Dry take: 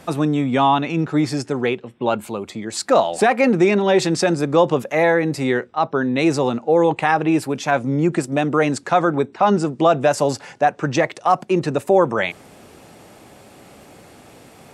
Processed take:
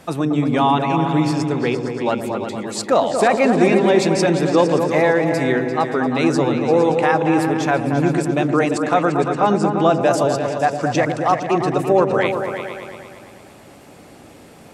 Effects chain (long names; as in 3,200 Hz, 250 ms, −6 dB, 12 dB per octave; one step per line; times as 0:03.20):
echo whose low-pass opens from repeat to repeat 115 ms, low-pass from 400 Hz, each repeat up 2 octaves, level −3 dB
level −1 dB